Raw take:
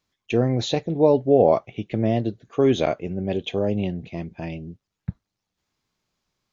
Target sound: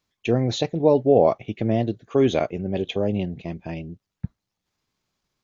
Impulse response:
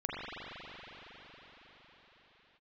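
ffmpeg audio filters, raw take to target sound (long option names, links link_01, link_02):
-af "atempo=1.2"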